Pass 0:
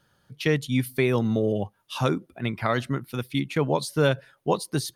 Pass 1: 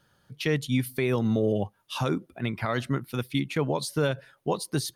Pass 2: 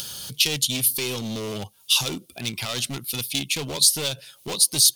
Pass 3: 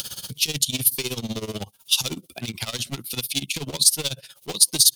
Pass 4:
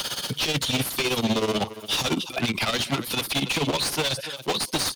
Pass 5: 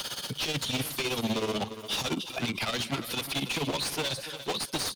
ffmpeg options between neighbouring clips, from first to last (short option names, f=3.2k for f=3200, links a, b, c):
-af "alimiter=limit=-15dB:level=0:latency=1:release=95"
-af "acompressor=mode=upward:threshold=-28dB:ratio=2.5,volume=25.5dB,asoftclip=hard,volume=-25.5dB,aexciter=amount=7.2:drive=6.7:freq=2.6k,volume=-2dB"
-filter_complex "[0:a]acrossover=split=320|3000[a][b][c];[b]acompressor=threshold=-33dB:ratio=6[d];[a][d][c]amix=inputs=3:normalize=0,tremolo=f=16:d=0.87,volume=4dB"
-filter_complex "[0:a]asplit=2[a][b];[b]adelay=279.9,volume=-19dB,highshelf=f=4k:g=-6.3[c];[a][c]amix=inputs=2:normalize=0,asplit=2[d][e];[e]highpass=f=720:p=1,volume=33dB,asoftclip=type=tanh:threshold=-1dB[f];[d][f]amix=inputs=2:normalize=0,lowpass=f=1.4k:p=1,volume=-6dB,acrossover=split=420|600|4300[g][h][i][j];[h]alimiter=level_in=3dB:limit=-24dB:level=0:latency=1:release=423,volume=-3dB[k];[g][k][i][j]amix=inputs=4:normalize=0,volume=-7dB"
-af "aecho=1:1:353:0.211,volume=-6dB"